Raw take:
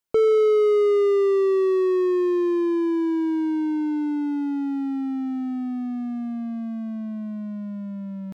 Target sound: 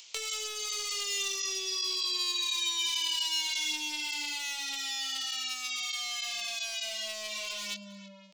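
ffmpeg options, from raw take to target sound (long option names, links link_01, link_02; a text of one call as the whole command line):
ffmpeg -i in.wav -filter_complex "[0:a]acrossover=split=170|640[link_01][link_02][link_03];[link_02]aeval=exprs='(mod(37.6*val(0)+1,2)-1)/37.6':channel_layout=same[link_04];[link_01][link_04][link_03]amix=inputs=3:normalize=0,acrossover=split=410 2900:gain=0.2 1 0.2[link_05][link_06][link_07];[link_05][link_06][link_07]amix=inputs=3:normalize=0,asplit=2[link_08][link_09];[link_09]aecho=0:1:316:0.112[link_10];[link_08][link_10]amix=inputs=2:normalize=0,flanger=delay=19.5:depth=3.9:speed=0.9,acompressor=mode=upward:threshold=-42dB:ratio=2.5,aresample=16000,aresample=44100,aeval=exprs='clip(val(0),-1,0.0119)':channel_layout=same,acompressor=threshold=-38dB:ratio=6,aexciter=amount=14.1:drive=6.3:freq=2500,volume=-4dB" out.wav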